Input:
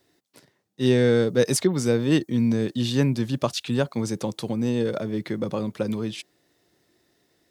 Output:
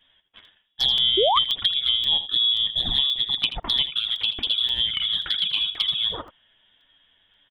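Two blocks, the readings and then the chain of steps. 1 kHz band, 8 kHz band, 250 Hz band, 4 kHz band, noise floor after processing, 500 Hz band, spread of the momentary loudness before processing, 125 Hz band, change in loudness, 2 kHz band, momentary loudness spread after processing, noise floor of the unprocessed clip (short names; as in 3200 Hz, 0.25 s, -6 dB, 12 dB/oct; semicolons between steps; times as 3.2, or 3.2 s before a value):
+7.5 dB, under -15 dB, -21.5 dB, +18.0 dB, -65 dBFS, -8.5 dB, 9 LU, -19.0 dB, +3.5 dB, -1.5 dB, 5 LU, -70 dBFS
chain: inverted band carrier 3600 Hz; envelope flanger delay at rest 10.7 ms, full sweep at -18.5 dBFS; compressor 4:1, threshold -29 dBFS, peak gain reduction 12.5 dB; echo 82 ms -12 dB; painted sound rise, 1.17–1.39, 350–1300 Hz -28 dBFS; crackling interface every 0.53 s, samples 64, zero, from 0.45; gain +8.5 dB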